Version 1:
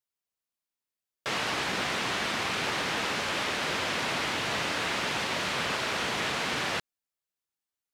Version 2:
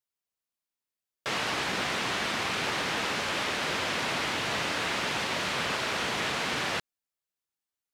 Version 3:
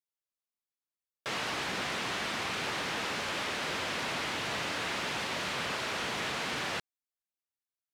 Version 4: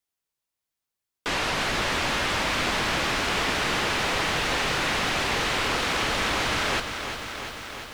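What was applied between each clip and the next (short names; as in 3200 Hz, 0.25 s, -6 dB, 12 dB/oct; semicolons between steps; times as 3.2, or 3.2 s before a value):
nothing audible
sample leveller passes 1; gain -7 dB
frequency shift -150 Hz; lo-fi delay 0.348 s, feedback 80%, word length 9-bit, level -9 dB; gain +8 dB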